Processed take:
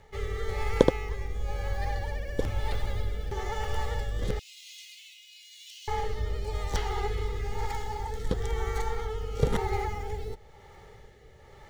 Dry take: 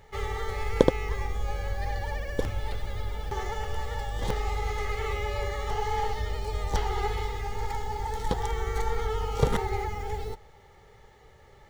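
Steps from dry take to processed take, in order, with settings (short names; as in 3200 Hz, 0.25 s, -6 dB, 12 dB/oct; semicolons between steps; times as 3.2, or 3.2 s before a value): rotary speaker horn 1 Hz; vocal rider 2 s; 4.39–5.88 Chebyshev high-pass 2600 Hz, order 5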